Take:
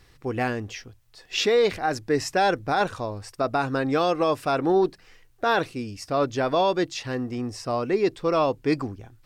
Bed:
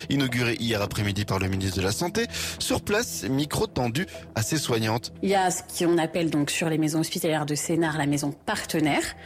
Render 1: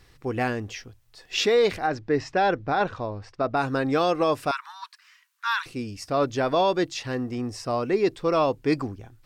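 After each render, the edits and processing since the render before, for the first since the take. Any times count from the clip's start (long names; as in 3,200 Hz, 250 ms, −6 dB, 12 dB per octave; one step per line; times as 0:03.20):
0:01.87–0:03.57: high-frequency loss of the air 170 metres
0:04.51–0:05.66: Butterworth high-pass 950 Hz 96 dB per octave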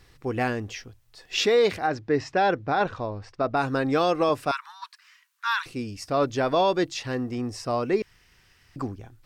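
0:01.54–0:02.86: high-pass filter 53 Hz
0:04.29–0:04.82: multiband upward and downward expander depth 40%
0:08.02–0:08.76: fill with room tone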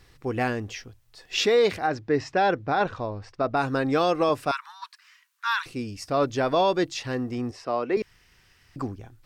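0:07.51–0:07.97: three-way crossover with the lows and the highs turned down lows −14 dB, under 240 Hz, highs −14 dB, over 4,200 Hz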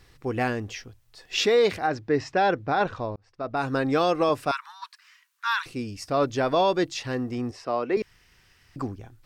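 0:03.16–0:03.74: fade in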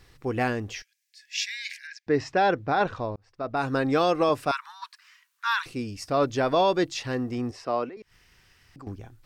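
0:00.82–0:02.07: Chebyshev high-pass with heavy ripple 1,600 Hz, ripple 6 dB
0:07.89–0:08.87: downward compressor 2.5 to 1, threshold −49 dBFS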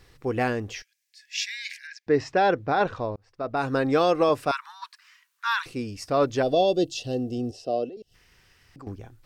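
parametric band 480 Hz +3 dB 0.69 octaves
0:06.43–0:08.14: gain on a spectral selection 790–2,600 Hz −20 dB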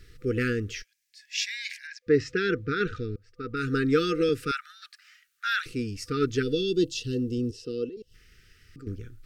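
brick-wall band-stop 500–1,200 Hz
low-shelf EQ 61 Hz +10 dB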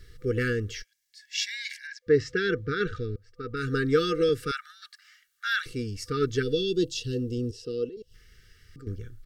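notch filter 2,500 Hz, Q 6.3
comb filter 1.8 ms, depth 33%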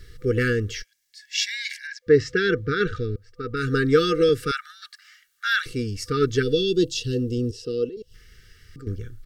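level +5 dB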